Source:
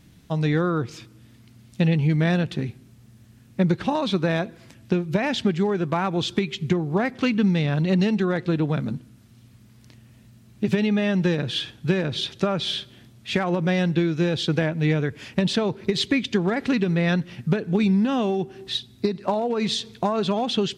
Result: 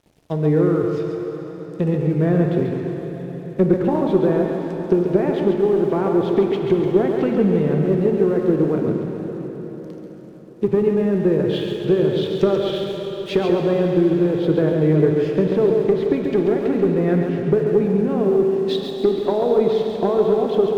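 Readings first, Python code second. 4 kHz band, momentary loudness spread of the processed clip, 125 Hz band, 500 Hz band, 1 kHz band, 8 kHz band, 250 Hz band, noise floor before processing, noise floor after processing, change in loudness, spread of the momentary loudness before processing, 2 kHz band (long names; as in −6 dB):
−7.0 dB, 10 LU, +1.5 dB, +9.5 dB, +0.5 dB, can't be measured, +3.5 dB, −52 dBFS, −34 dBFS, +4.5 dB, 7 LU, −6.0 dB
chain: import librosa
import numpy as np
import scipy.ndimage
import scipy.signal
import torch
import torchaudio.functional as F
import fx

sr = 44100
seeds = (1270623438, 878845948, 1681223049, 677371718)

p1 = fx.env_lowpass_down(x, sr, base_hz=1300.0, full_db=-20.0)
p2 = fx.peak_eq(p1, sr, hz=400.0, db=13.5, octaves=0.7)
p3 = fx.rider(p2, sr, range_db=3, speed_s=0.5)
p4 = p3 + fx.echo_feedback(p3, sr, ms=137, feedback_pct=36, wet_db=-6.0, dry=0)
p5 = np.sign(p4) * np.maximum(np.abs(p4) - 10.0 ** (-45.5 / 20.0), 0.0)
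p6 = fx.cheby_harmonics(p5, sr, harmonics=(2, 5), levels_db=(-21, -28), full_scale_db=-1.0)
p7 = fx.rev_plate(p6, sr, seeds[0], rt60_s=5.0, hf_ratio=0.95, predelay_ms=0, drr_db=3.0)
y = p7 * librosa.db_to_amplitude(-3.5)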